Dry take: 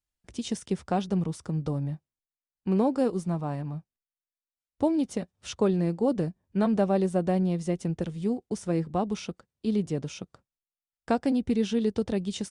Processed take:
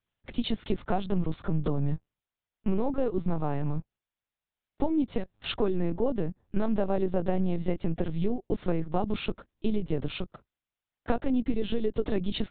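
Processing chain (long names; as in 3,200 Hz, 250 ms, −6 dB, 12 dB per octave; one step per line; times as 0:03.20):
high-pass filter 56 Hz 24 dB per octave
downward compressor 10 to 1, threshold −30 dBFS, peak gain reduction 12 dB
linear-prediction vocoder at 8 kHz pitch kept
level +8 dB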